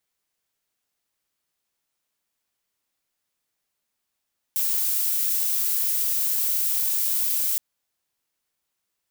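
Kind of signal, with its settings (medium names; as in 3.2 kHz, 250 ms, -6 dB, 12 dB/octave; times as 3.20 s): noise violet, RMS -23.5 dBFS 3.02 s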